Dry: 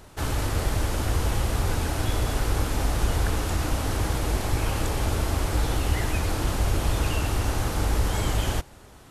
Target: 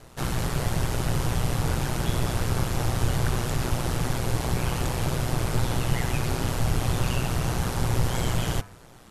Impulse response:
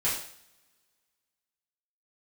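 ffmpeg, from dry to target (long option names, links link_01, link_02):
-af "aeval=exprs='val(0)*sin(2*PI*61*n/s)':channel_layout=same,bandreject=frequency=99.59:width_type=h:width=4,bandreject=frequency=199.18:width_type=h:width=4,bandreject=frequency=298.77:width_type=h:width=4,bandreject=frequency=398.36:width_type=h:width=4,bandreject=frequency=497.95:width_type=h:width=4,bandreject=frequency=597.54:width_type=h:width=4,bandreject=frequency=697.13:width_type=h:width=4,bandreject=frequency=796.72:width_type=h:width=4,bandreject=frequency=896.31:width_type=h:width=4,bandreject=frequency=995.9:width_type=h:width=4,bandreject=frequency=1095.49:width_type=h:width=4,bandreject=frequency=1195.08:width_type=h:width=4,bandreject=frequency=1294.67:width_type=h:width=4,bandreject=frequency=1394.26:width_type=h:width=4,bandreject=frequency=1493.85:width_type=h:width=4,bandreject=frequency=1593.44:width_type=h:width=4,bandreject=frequency=1693.03:width_type=h:width=4,bandreject=frequency=1792.62:width_type=h:width=4,bandreject=frequency=1892.21:width_type=h:width=4,bandreject=frequency=1991.8:width_type=h:width=4,bandreject=frequency=2091.39:width_type=h:width=4,bandreject=frequency=2190.98:width_type=h:width=4,bandreject=frequency=2290.57:width_type=h:width=4,bandreject=frequency=2390.16:width_type=h:width=4,bandreject=frequency=2489.75:width_type=h:width=4,volume=2.5dB"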